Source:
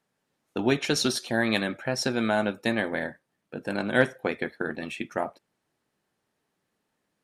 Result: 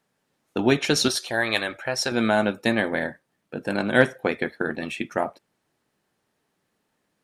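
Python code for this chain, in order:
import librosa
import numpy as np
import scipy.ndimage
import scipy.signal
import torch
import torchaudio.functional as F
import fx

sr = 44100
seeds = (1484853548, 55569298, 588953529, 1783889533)

y = fx.peak_eq(x, sr, hz=200.0, db=-14.0, octaves=1.4, at=(1.08, 2.12))
y = y * librosa.db_to_amplitude(4.0)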